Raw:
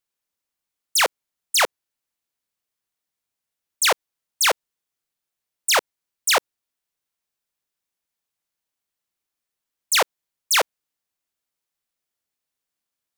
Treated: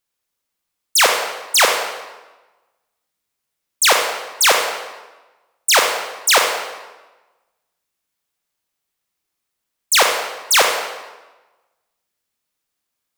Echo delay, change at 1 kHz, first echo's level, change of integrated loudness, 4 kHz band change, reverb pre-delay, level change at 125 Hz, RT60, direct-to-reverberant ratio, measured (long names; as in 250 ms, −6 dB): no echo audible, +6.5 dB, no echo audible, +5.5 dB, +6.0 dB, 33 ms, can't be measured, 1.2 s, 2.0 dB